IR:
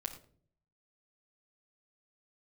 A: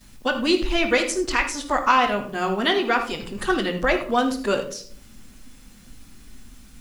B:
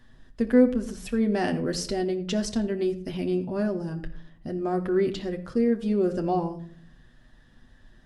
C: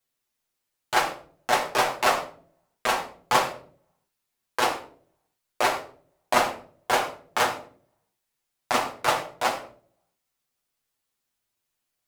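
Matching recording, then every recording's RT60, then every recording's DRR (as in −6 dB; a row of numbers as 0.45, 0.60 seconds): C; 0.50, 0.50, 0.50 seconds; −9.5, 3.5, −1.5 decibels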